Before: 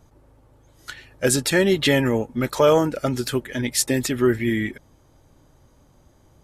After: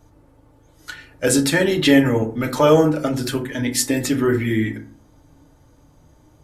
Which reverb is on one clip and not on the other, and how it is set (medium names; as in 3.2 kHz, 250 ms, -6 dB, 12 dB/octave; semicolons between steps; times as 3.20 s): FDN reverb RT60 0.45 s, low-frequency decay 1.45×, high-frequency decay 0.5×, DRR 2.5 dB